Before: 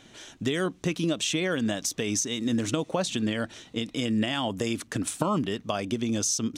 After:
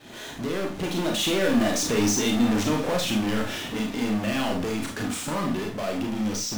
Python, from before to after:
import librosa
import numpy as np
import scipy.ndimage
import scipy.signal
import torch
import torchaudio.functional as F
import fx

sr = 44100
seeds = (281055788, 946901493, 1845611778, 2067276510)

y = fx.fade_in_head(x, sr, length_s=1.45)
y = fx.doppler_pass(y, sr, speed_mps=19, closest_m=10.0, pass_at_s=1.94)
y = fx.lowpass(y, sr, hz=2200.0, slope=6)
y = fx.low_shelf(y, sr, hz=110.0, db=-6.0)
y = fx.power_curve(y, sr, exponent=0.35)
y = fx.rev_schroeder(y, sr, rt60_s=0.35, comb_ms=26, drr_db=0.5)
y = F.gain(torch.from_numpy(y), -3.0).numpy()